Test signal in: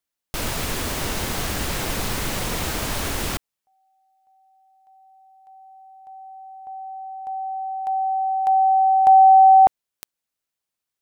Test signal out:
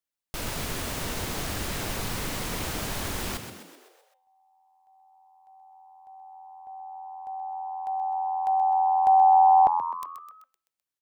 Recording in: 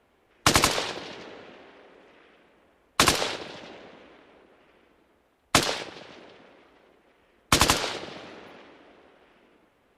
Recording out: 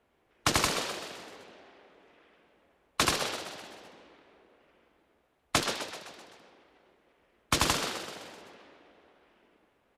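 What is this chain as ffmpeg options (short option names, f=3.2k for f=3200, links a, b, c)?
-filter_complex "[0:a]bandreject=f=263.4:t=h:w=4,bandreject=f=526.8:t=h:w=4,bandreject=f=790.2:t=h:w=4,bandreject=f=1.0536k:t=h:w=4,bandreject=f=1.317k:t=h:w=4,bandreject=f=1.5804k:t=h:w=4,bandreject=f=1.8438k:t=h:w=4,bandreject=f=2.1072k:t=h:w=4,bandreject=f=2.3706k:t=h:w=4,bandreject=f=2.634k:t=h:w=4,bandreject=f=2.8974k:t=h:w=4,bandreject=f=3.1608k:t=h:w=4,asplit=7[a][b][c][d][e][f][g];[b]adelay=128,afreqshift=85,volume=-9dB[h];[c]adelay=256,afreqshift=170,volume=-14.2dB[i];[d]adelay=384,afreqshift=255,volume=-19.4dB[j];[e]adelay=512,afreqshift=340,volume=-24.6dB[k];[f]adelay=640,afreqshift=425,volume=-29.8dB[l];[g]adelay=768,afreqshift=510,volume=-35dB[m];[a][h][i][j][k][l][m]amix=inputs=7:normalize=0,volume=-6.5dB"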